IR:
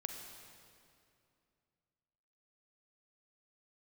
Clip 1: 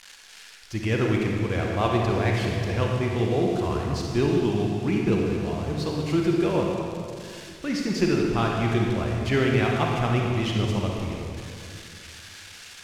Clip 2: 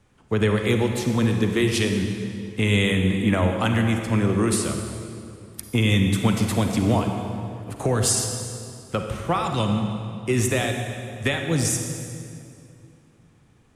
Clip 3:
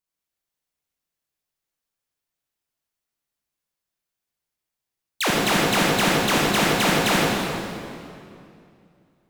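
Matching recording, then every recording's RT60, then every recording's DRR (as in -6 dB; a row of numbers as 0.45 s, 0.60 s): 2; 2.5 s, 2.5 s, 2.5 s; -1.0 dB, 3.5 dB, -5.0 dB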